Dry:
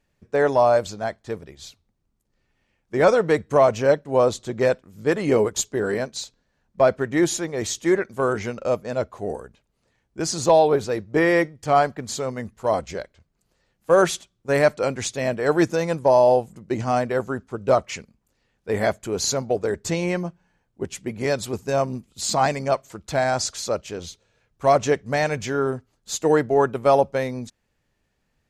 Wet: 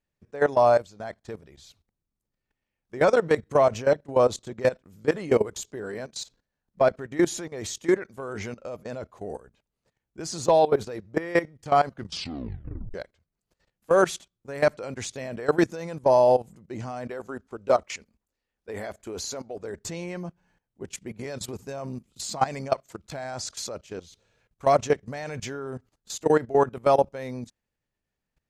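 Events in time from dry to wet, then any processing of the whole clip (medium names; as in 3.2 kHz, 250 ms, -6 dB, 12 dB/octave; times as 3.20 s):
11.85 s: tape stop 1.09 s
17.07–19.59 s: peaking EQ 140 Hz -10.5 dB
whole clip: level held to a coarse grid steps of 17 dB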